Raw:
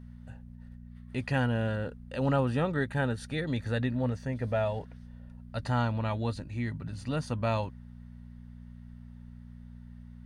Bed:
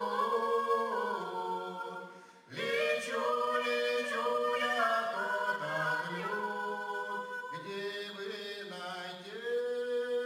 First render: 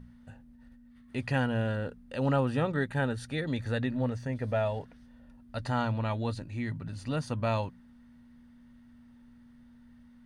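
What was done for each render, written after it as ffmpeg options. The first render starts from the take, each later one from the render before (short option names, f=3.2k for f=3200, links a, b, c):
-af "bandreject=f=60:t=h:w=4,bandreject=f=120:t=h:w=4,bandreject=f=180:t=h:w=4"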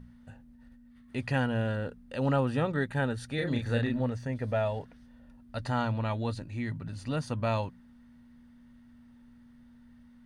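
-filter_complex "[0:a]asettb=1/sr,asplit=3[a][b][c];[a]atrim=end=3.354[d];[b]atrim=start=3.35:end=4,asetpts=PTS-STARTPTS,afade=t=in:d=0.004:c=qsin,afade=t=out:st=0.646:d=0.004:c=qsin,asplit=2[e][f];[f]adelay=34,volume=-3dB[g];[e][g]amix=inputs=2:normalize=0,atrim=end_sample=28665[h];[c]atrim=start=3.996[i];[d][h]acrossfade=d=0.004:c1=hsin:c2=qsin[j];[j][i]acrossfade=d=0.004:c1=qsin:c2=hsin"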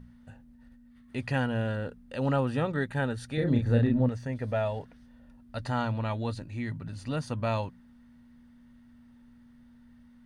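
-filter_complex "[0:a]asettb=1/sr,asplit=3[a][b][c];[a]atrim=end=3.374[d];[b]atrim=start=3.37:end=4.09,asetpts=PTS-STARTPTS,afade=t=in:d=0.004:c=qsin,afade=t=out:st=0.716:d=0.004:c=qsin,tiltshelf=f=810:g=6.5[e];[c]atrim=start=4.086[f];[d][e]acrossfade=d=0.004:c1=hsin:c2=qsin[g];[g][f]acrossfade=d=0.004:c1=qsin:c2=hsin"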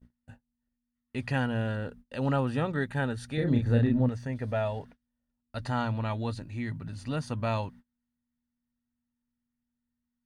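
-af "equalizer=f=530:t=o:w=0.34:g=-2.5,agate=range=-29dB:threshold=-48dB:ratio=16:detection=peak"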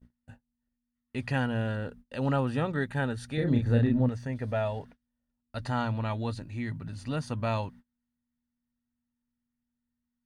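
-af anull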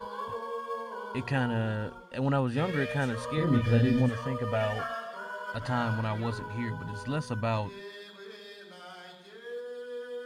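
-filter_complex "[1:a]volume=-5.5dB[a];[0:a][a]amix=inputs=2:normalize=0"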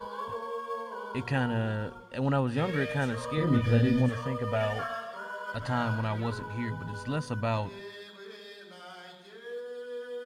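-filter_complex "[0:a]asplit=2[a][b];[b]adelay=137,lowpass=f=2k:p=1,volume=-24dB,asplit=2[c][d];[d]adelay=137,lowpass=f=2k:p=1,volume=0.42,asplit=2[e][f];[f]adelay=137,lowpass=f=2k:p=1,volume=0.42[g];[a][c][e][g]amix=inputs=4:normalize=0"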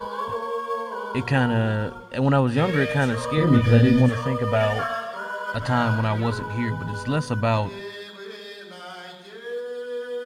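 -af "volume=8dB"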